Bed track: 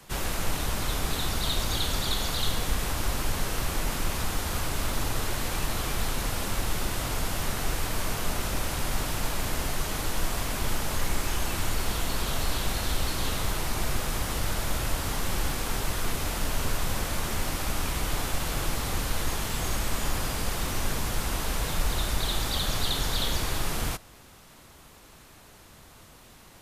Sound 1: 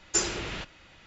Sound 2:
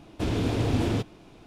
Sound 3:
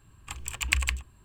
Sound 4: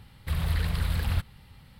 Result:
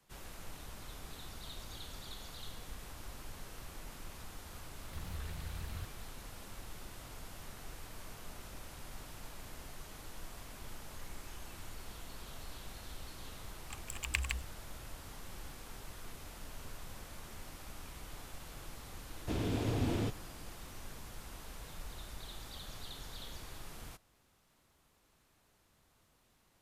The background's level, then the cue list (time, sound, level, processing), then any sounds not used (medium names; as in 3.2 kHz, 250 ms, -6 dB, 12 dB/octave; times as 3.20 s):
bed track -19.5 dB
4.65 s: add 4 -17 dB + warped record 78 rpm, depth 250 cents
13.42 s: add 3 -9.5 dB
19.08 s: add 2 -8.5 dB
not used: 1